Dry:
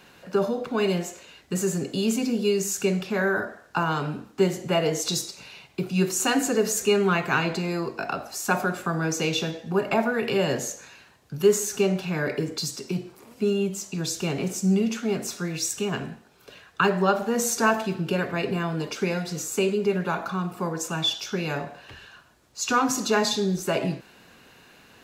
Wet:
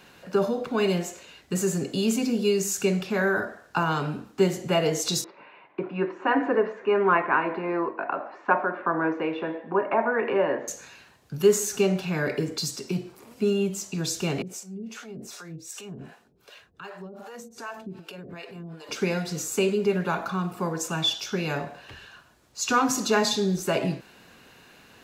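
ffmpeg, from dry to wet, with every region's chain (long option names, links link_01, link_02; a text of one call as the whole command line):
ffmpeg -i in.wav -filter_complex "[0:a]asettb=1/sr,asplit=3[link_01][link_02][link_03];[link_01]atrim=end=5.244[link_04];[link_02]atrim=start=5.24:end=10.68,asetpts=PTS-STARTPTS,afade=type=in:duration=0.004:curve=qsin,afade=type=out:start_time=5.436:duration=0.004:curve=qsin,tremolo=f=1.6:d=0.31,highpass=300,equalizer=frequency=310:width_type=q:width=4:gain=7,equalizer=frequency=570:width_type=q:width=4:gain=5,equalizer=frequency=1000:width_type=q:width=4:gain=10,equalizer=frequency=1800:width_type=q:width=4:gain=4,lowpass=frequency=2200:width=0.5412,lowpass=frequency=2200:width=1.3066[link_05];[link_03]atrim=start=10.676[link_06];[link_04][link_05]acrossfade=duration=0.004:curve1=hsin:curve2=qsin[link_07];[link_07][link_06]acrossfade=duration=0.004:curve1=qsin:curve2=hsin,asettb=1/sr,asplit=3[link_08][link_09][link_10];[link_08]atrim=end=14.424[link_11];[link_09]atrim=start=14.42:end=18.89,asetpts=PTS-STARTPTS,afade=type=in:duration=0.004:curve=qsin,afade=type=out:start_time=4.466:duration=0.004:curve=qsin,acompressor=threshold=-32dB:ratio=5:attack=3.2:release=140:knee=1:detection=peak,acrossover=split=470[link_12][link_13];[link_12]aeval=exprs='val(0)*(1-1/2+1/2*cos(2*PI*2.6*n/s))':channel_layout=same[link_14];[link_13]aeval=exprs='val(0)*(1-1/2-1/2*cos(2*PI*2.6*n/s))':channel_layout=same[link_15];[link_14][link_15]amix=inputs=2:normalize=0[link_16];[link_10]atrim=start=18.886[link_17];[link_11][link_16]acrossfade=duration=0.004:curve1=hsin:curve2=qsin[link_18];[link_18][link_17]acrossfade=duration=0.004:curve1=qsin:curve2=hsin" out.wav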